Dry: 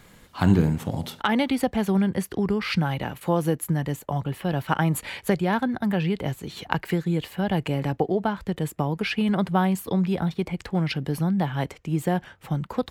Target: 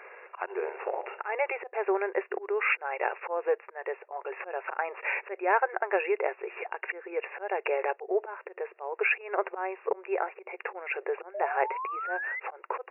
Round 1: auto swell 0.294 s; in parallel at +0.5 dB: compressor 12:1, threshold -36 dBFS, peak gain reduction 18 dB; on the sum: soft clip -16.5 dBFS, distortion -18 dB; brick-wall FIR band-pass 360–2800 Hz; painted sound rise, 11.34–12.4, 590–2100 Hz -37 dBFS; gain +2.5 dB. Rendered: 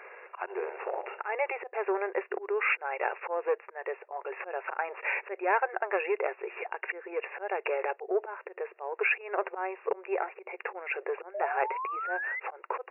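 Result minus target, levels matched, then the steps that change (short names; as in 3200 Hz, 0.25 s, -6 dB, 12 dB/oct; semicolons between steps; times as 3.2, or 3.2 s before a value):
soft clip: distortion +17 dB
change: soft clip -6.5 dBFS, distortion -35 dB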